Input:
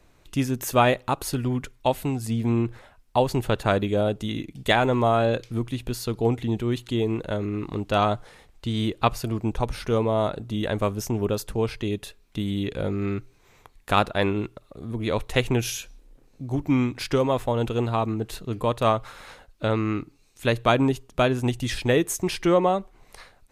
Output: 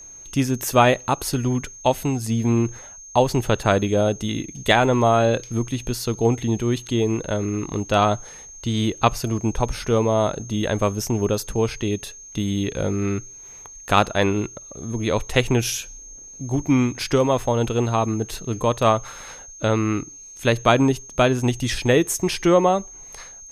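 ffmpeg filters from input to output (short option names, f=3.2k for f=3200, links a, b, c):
-af "aeval=exprs='val(0)+0.00631*sin(2*PI*6400*n/s)':c=same,equalizer=f=5.6k:t=o:w=0.3:g=4,volume=3.5dB"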